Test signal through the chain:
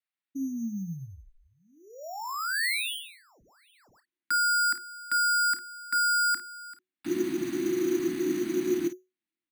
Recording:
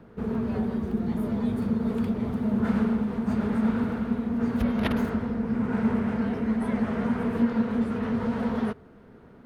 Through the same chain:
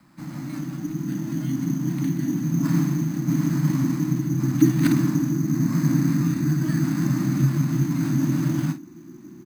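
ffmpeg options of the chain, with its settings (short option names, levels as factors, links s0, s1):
-filter_complex "[0:a]asubboost=boost=11.5:cutoff=150,acrossover=split=2600[s0][s1];[s1]acompressor=threshold=0.00562:ratio=4:attack=1:release=60[s2];[s0][s2]amix=inputs=2:normalize=0,firequalizer=gain_entry='entry(200,0);entry(500,-28);entry(1000,-1);entry(2300,12);entry(3300,9);entry(5100,-15)':delay=0.05:min_phase=1,afreqshift=-370,acrusher=samples=7:mix=1:aa=0.000001,asplit=2[s3][s4];[s4]aecho=0:1:30|52:0.237|0.251[s5];[s3][s5]amix=inputs=2:normalize=0,volume=0.631"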